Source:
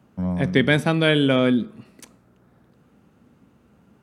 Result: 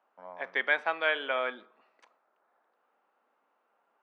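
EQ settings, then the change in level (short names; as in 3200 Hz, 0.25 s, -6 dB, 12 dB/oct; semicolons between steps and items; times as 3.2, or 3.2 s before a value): dynamic EQ 1900 Hz, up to +6 dB, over -36 dBFS, Q 0.78; ladder high-pass 610 Hz, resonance 25%; tape spacing loss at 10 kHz 35 dB; +1.5 dB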